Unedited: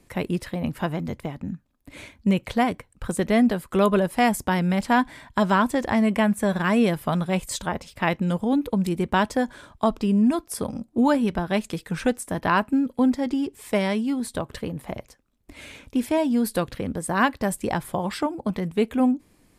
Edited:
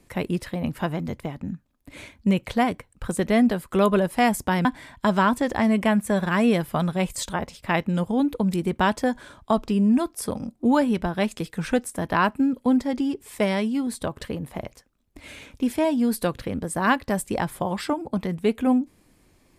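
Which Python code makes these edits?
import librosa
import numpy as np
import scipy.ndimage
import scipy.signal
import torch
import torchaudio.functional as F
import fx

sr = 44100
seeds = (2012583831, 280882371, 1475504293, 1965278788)

y = fx.edit(x, sr, fx.cut(start_s=4.65, length_s=0.33), tone=tone)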